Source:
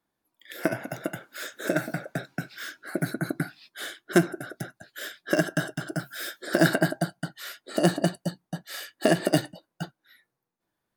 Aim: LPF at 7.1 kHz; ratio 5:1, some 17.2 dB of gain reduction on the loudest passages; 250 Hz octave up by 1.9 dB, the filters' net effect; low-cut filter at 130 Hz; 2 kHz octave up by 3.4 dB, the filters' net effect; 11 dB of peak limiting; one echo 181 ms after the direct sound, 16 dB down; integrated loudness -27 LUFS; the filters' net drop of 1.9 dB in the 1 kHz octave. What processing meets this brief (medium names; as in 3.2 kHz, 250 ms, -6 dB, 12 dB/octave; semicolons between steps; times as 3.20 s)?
high-pass 130 Hz; low-pass 7.1 kHz; peaking EQ 250 Hz +4 dB; peaking EQ 1 kHz -6.5 dB; peaking EQ 2 kHz +7.5 dB; compression 5:1, threshold -35 dBFS; peak limiter -27.5 dBFS; delay 181 ms -16 dB; trim +14 dB